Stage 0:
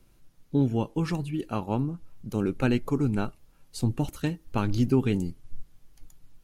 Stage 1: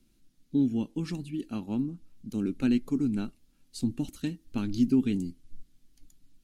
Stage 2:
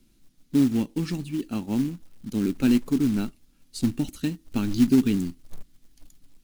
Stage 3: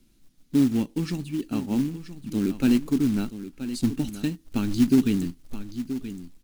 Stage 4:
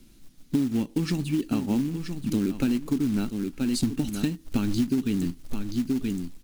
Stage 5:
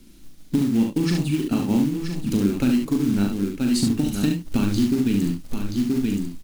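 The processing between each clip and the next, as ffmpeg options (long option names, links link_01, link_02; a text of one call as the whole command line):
ffmpeg -i in.wav -af "equalizer=frequency=125:width_type=o:width=1:gain=-5,equalizer=frequency=250:width_type=o:width=1:gain=12,equalizer=frequency=500:width_type=o:width=1:gain=-6,equalizer=frequency=1000:width_type=o:width=1:gain=-7,equalizer=frequency=4000:width_type=o:width=1:gain=5,equalizer=frequency=8000:width_type=o:width=1:gain=4,volume=-7.5dB" out.wav
ffmpeg -i in.wav -af "acrusher=bits=5:mode=log:mix=0:aa=0.000001,volume=5dB" out.wav
ffmpeg -i in.wav -af "aecho=1:1:977:0.251" out.wav
ffmpeg -i in.wav -af "acompressor=threshold=-29dB:ratio=10,volume=7.5dB" out.wav
ffmpeg -i in.wav -af "aecho=1:1:40|70:0.531|0.562,volume=3dB" out.wav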